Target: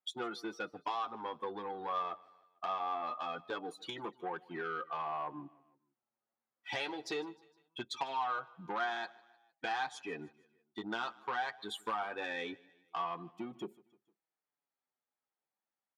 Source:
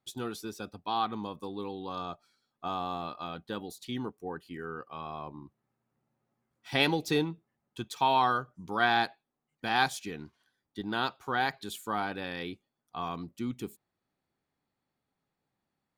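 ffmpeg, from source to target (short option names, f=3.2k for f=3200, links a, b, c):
-filter_complex "[0:a]afftdn=nr=21:nf=-43,asplit=2[a][b];[b]highpass=f=720:p=1,volume=8dB,asoftclip=type=tanh:threshold=-11.5dB[c];[a][c]amix=inputs=2:normalize=0,lowpass=f=6k:p=1,volume=-6dB,acompressor=threshold=-40dB:ratio=8,highshelf=f=2.1k:g=-10.5,asoftclip=type=tanh:threshold=-38dB,highpass=f=700:p=1,aecho=1:1:153|306|459:0.0708|0.0368|0.0191,flanger=delay=5.5:depth=3.8:regen=-9:speed=0.22:shape=sinusoidal,volume=15.5dB"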